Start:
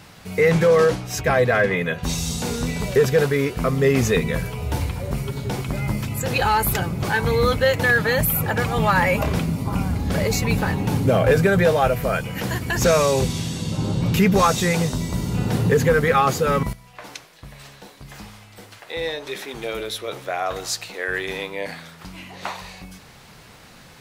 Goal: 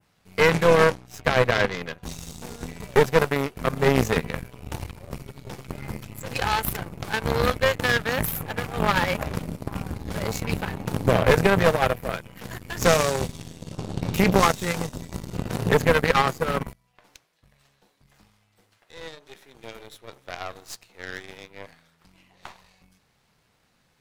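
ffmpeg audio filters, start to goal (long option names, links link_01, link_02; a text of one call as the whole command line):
ffmpeg -i in.wav -af "adynamicequalizer=threshold=0.0126:dfrequency=4300:dqfactor=0.73:tfrequency=4300:tqfactor=0.73:attack=5:release=100:ratio=0.375:range=2:mode=cutabove:tftype=bell,aeval=exprs='0.473*(cos(1*acos(clip(val(0)/0.473,-1,1)))-cos(1*PI/2))+0.15*(cos(2*acos(clip(val(0)/0.473,-1,1)))-cos(2*PI/2))+0.106*(cos(3*acos(clip(val(0)/0.473,-1,1)))-cos(3*PI/2))+0.0168*(cos(7*acos(clip(val(0)/0.473,-1,1)))-cos(7*PI/2))+0.0211*(cos(8*acos(clip(val(0)/0.473,-1,1)))-cos(8*PI/2))':channel_layout=same,volume=1.5dB" out.wav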